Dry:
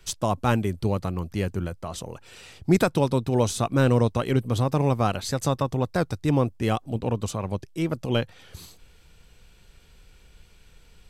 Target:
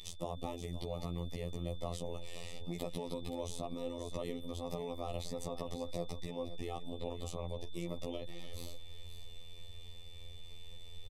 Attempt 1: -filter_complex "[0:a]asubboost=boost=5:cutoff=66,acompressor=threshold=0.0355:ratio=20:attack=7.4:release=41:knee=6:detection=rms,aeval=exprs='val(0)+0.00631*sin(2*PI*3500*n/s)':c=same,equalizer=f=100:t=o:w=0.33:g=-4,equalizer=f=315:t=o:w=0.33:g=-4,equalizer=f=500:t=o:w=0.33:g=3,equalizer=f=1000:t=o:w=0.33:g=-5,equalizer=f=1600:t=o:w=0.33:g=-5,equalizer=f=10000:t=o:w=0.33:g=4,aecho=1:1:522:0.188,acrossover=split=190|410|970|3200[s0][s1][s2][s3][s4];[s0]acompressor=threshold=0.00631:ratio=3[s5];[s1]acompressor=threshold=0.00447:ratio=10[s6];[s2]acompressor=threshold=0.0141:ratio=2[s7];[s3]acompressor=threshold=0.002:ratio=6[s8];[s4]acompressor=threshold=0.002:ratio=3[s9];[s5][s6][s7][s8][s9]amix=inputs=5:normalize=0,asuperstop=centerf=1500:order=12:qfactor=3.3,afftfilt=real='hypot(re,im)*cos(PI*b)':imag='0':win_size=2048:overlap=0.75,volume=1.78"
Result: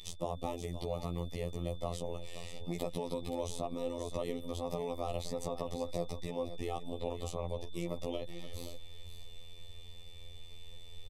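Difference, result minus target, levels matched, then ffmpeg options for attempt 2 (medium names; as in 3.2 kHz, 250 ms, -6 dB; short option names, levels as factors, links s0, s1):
compression: peak gain reduction -5.5 dB
-filter_complex "[0:a]asubboost=boost=5:cutoff=66,acompressor=threshold=0.0178:ratio=20:attack=7.4:release=41:knee=6:detection=rms,aeval=exprs='val(0)+0.00631*sin(2*PI*3500*n/s)':c=same,equalizer=f=100:t=o:w=0.33:g=-4,equalizer=f=315:t=o:w=0.33:g=-4,equalizer=f=500:t=o:w=0.33:g=3,equalizer=f=1000:t=o:w=0.33:g=-5,equalizer=f=1600:t=o:w=0.33:g=-5,equalizer=f=10000:t=o:w=0.33:g=4,aecho=1:1:522:0.188,acrossover=split=190|410|970|3200[s0][s1][s2][s3][s4];[s0]acompressor=threshold=0.00631:ratio=3[s5];[s1]acompressor=threshold=0.00447:ratio=10[s6];[s2]acompressor=threshold=0.0141:ratio=2[s7];[s3]acompressor=threshold=0.002:ratio=6[s8];[s4]acompressor=threshold=0.002:ratio=3[s9];[s5][s6][s7][s8][s9]amix=inputs=5:normalize=0,asuperstop=centerf=1500:order=12:qfactor=3.3,afftfilt=real='hypot(re,im)*cos(PI*b)':imag='0':win_size=2048:overlap=0.75,volume=1.78"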